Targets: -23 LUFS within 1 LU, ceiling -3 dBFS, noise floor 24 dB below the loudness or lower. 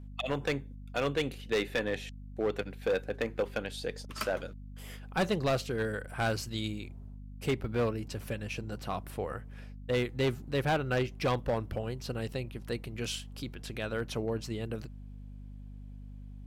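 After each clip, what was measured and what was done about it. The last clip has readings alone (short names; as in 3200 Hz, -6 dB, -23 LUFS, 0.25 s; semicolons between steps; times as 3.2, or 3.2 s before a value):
clipped 1.4%; flat tops at -23.5 dBFS; hum 50 Hz; harmonics up to 250 Hz; hum level -43 dBFS; loudness -34.0 LUFS; peak -23.5 dBFS; loudness target -23.0 LUFS
-> clip repair -23.5 dBFS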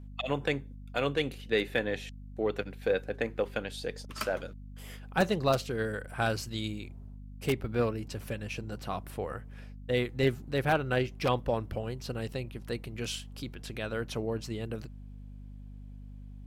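clipped 0.0%; hum 50 Hz; harmonics up to 250 Hz; hum level -43 dBFS
-> notches 50/100/150/200/250 Hz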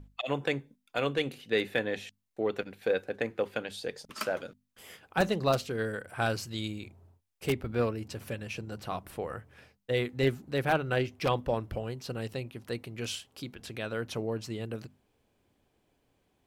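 hum none; loudness -33.0 LUFS; peak -13.5 dBFS; loudness target -23.0 LUFS
-> gain +10 dB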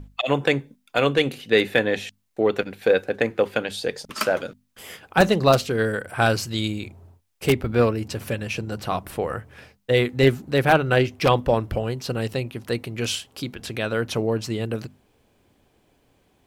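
loudness -23.0 LUFS; peak -3.5 dBFS; noise floor -65 dBFS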